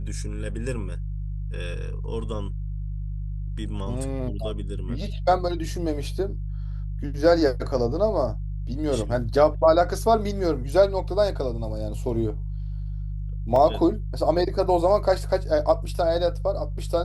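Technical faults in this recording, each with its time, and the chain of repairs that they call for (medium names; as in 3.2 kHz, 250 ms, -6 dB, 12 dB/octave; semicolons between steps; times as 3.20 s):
hum 50 Hz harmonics 3 -30 dBFS
13.56 s: dropout 2.2 ms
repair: de-hum 50 Hz, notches 3; interpolate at 13.56 s, 2.2 ms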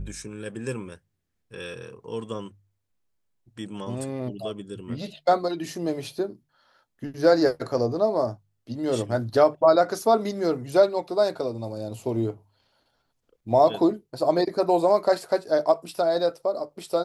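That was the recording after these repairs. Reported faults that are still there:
nothing left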